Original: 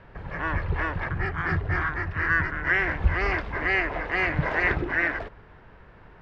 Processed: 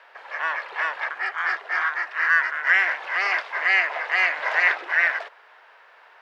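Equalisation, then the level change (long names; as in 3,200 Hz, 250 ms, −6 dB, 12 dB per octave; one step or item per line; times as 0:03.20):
high-pass filter 600 Hz 24 dB per octave
high-shelf EQ 2,100 Hz +8.5 dB
+1.5 dB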